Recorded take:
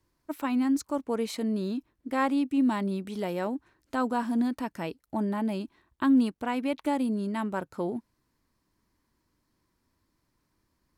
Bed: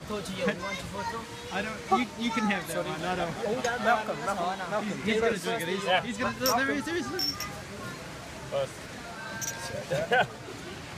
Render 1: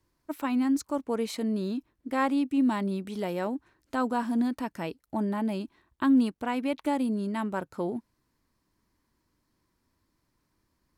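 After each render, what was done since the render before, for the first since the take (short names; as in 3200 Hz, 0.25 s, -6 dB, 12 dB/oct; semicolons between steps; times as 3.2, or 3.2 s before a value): nothing audible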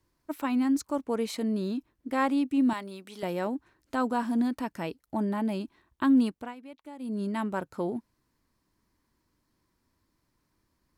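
2.73–3.23 HPF 930 Hz 6 dB/oct; 6.31–7.22 dip -17 dB, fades 0.24 s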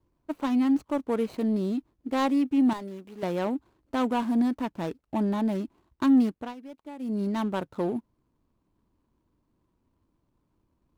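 median filter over 25 samples; in parallel at -6 dB: soft clip -24.5 dBFS, distortion -12 dB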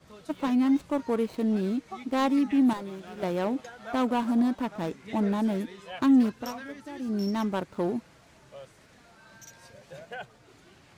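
add bed -15.5 dB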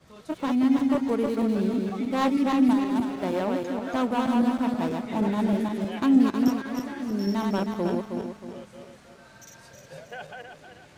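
regenerating reverse delay 0.158 s, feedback 62%, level -2.5 dB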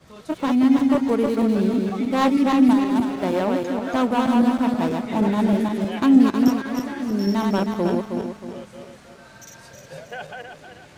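gain +5 dB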